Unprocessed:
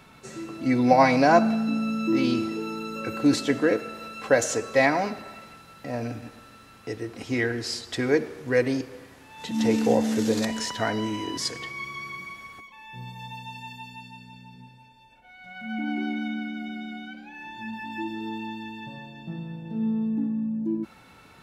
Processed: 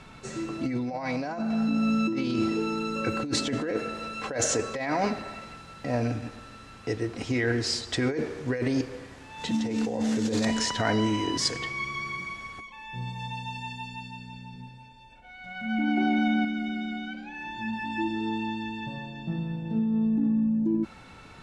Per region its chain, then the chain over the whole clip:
0:15.97–0:16.45: parametric band 710 Hz +6.5 dB 1.1 octaves + envelope flattener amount 70%
whole clip: low-pass filter 9,200 Hz 24 dB per octave; low-shelf EQ 68 Hz +10.5 dB; compressor whose output falls as the input rises −26 dBFS, ratio −1

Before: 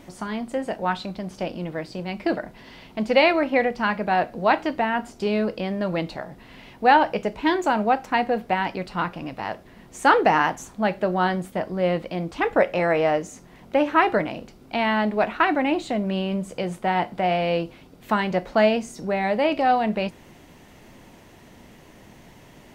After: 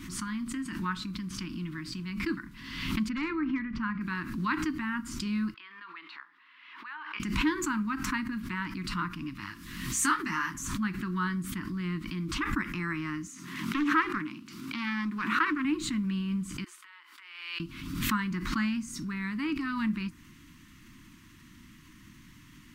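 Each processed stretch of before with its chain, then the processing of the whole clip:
0:03.09–0:04.01: hard clipping −11.5 dBFS + head-to-tape spacing loss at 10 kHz 28 dB
0:05.54–0:07.20: downward compressor, threshold −22 dBFS + high-pass filter 600 Hz 24 dB per octave + high-frequency loss of the air 370 metres
0:09.40–0:10.54: high-shelf EQ 2,700 Hz +10 dB + micro pitch shift up and down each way 15 cents
0:13.28–0:15.65: high-pass filter 210 Hz + highs frequency-modulated by the lows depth 0.28 ms
0:16.64–0:17.60: Bessel high-pass filter 820 Hz, order 8 + downward compressor, threshold −41 dBFS
whole clip: elliptic band-stop filter 310–1,100 Hz, stop band 40 dB; dynamic equaliser 3,200 Hz, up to −8 dB, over −44 dBFS, Q 1.1; background raised ahead of every attack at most 48 dB per second; level −3.5 dB

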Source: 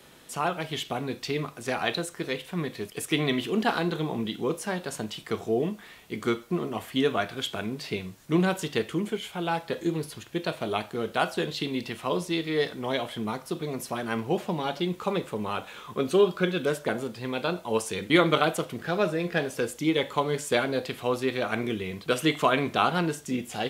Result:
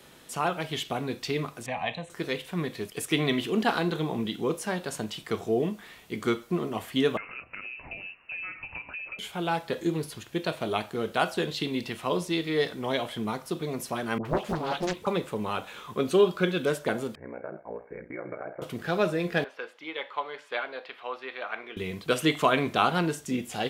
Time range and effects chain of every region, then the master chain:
0:01.66–0:02.10: high-frequency loss of the air 120 metres + phaser with its sweep stopped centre 1,400 Hz, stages 6
0:07.17–0:09.19: downward compressor, threshold −35 dBFS + voice inversion scrambler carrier 2,800 Hz
0:14.18–0:15.07: all-pass dispersion highs, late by 68 ms, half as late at 700 Hz + highs frequency-modulated by the lows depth 0.96 ms
0:17.15–0:18.62: downward compressor, threshold −26 dBFS + ring modulation 30 Hz + Chebyshev low-pass with heavy ripple 2,300 Hz, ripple 9 dB
0:19.44–0:21.77: high-pass filter 850 Hz + high-frequency loss of the air 350 metres
whole clip: no processing

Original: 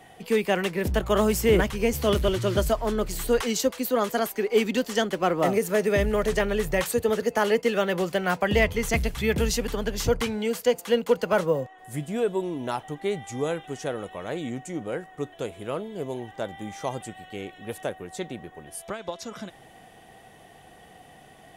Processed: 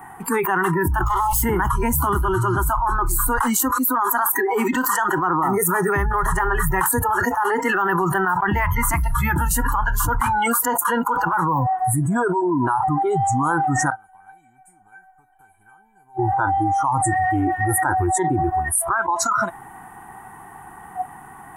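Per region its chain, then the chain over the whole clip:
0:01.03–0:01.43: lower of the sound and its delayed copy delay 0.62 ms + flat-topped bell 2,900 Hz +10 dB 2.5 octaves + phaser with its sweep stopped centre 670 Hz, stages 4
0:13.90–0:16.19: downward compressor, threshold −32 dBFS + tuned comb filter 780 Hz, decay 0.21 s, mix 100%
whole clip: drawn EQ curve 390 Hz 0 dB, 580 Hz −21 dB, 870 Hz +15 dB, 1,500 Hz +8 dB, 3,300 Hz −18 dB, 5,300 Hz −19 dB, 9,100 Hz +4 dB; noise reduction from a noise print of the clip's start 24 dB; envelope flattener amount 100%; level −9 dB

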